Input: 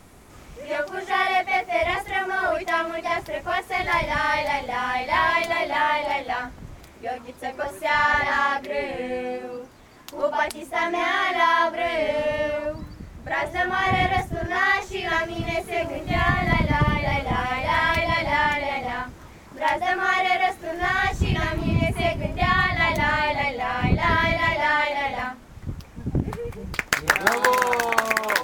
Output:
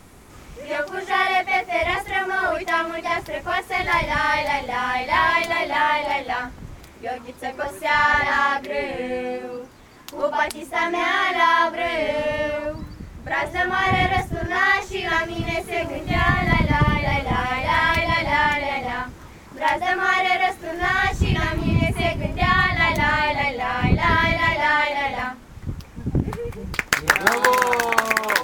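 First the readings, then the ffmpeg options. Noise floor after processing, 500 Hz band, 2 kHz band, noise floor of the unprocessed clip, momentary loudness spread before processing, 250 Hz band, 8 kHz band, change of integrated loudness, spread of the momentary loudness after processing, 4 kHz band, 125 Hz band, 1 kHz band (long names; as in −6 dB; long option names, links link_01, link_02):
−44 dBFS, +0.5 dB, +2.5 dB, −46 dBFS, 11 LU, +2.5 dB, +2.5 dB, +2.0 dB, 12 LU, +2.5 dB, +2.5 dB, +2.0 dB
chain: -af "equalizer=frequency=650:width=3.8:gain=-3,volume=2.5dB"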